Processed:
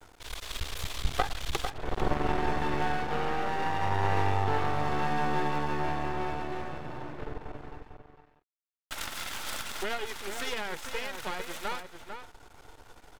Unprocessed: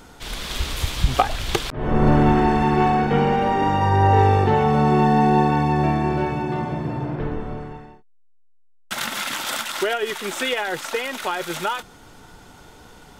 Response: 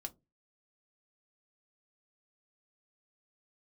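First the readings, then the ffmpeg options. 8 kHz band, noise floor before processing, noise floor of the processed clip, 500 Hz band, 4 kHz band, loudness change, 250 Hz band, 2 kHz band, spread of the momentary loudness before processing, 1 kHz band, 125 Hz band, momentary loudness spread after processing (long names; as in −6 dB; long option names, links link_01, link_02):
−9.0 dB, −51 dBFS, −62 dBFS, −12.5 dB, −9.5 dB, −12.0 dB, −16.0 dB, −8.0 dB, 12 LU, −11.5 dB, −14.5 dB, 14 LU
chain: -filter_complex "[0:a]equalizer=frequency=190:width=1.6:gain=-14.5,acrossover=split=1300[link_01][link_02];[link_01]acompressor=mode=upward:threshold=-37dB:ratio=2.5[link_03];[link_03][link_02]amix=inputs=2:normalize=0,aeval=exprs='max(val(0),0)':channel_layout=same,asplit=2[link_04][link_05];[link_05]adelay=449,volume=-7dB,highshelf=frequency=4000:gain=-10.1[link_06];[link_04][link_06]amix=inputs=2:normalize=0,volume=-6dB"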